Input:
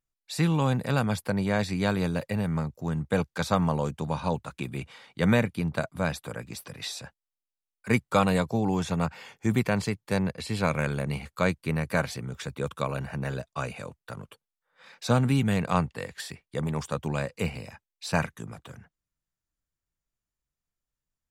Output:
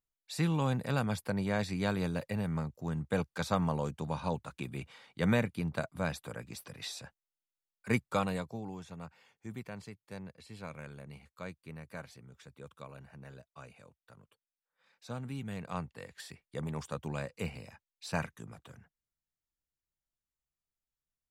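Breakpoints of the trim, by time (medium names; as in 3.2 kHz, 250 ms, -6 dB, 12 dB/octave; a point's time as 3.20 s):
8.01 s -6 dB
8.84 s -18.5 dB
15.08 s -18.5 dB
16.43 s -8 dB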